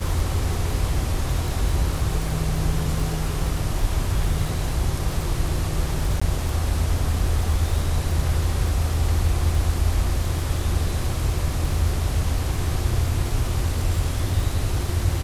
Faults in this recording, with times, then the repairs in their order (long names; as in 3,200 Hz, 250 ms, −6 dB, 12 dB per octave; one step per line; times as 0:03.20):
surface crackle 43 per second −28 dBFS
0:06.20–0:06.21: drop-out 15 ms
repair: click removal
repair the gap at 0:06.20, 15 ms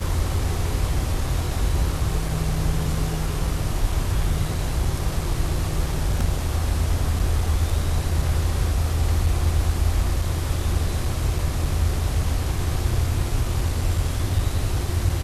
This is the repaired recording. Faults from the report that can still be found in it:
none of them is left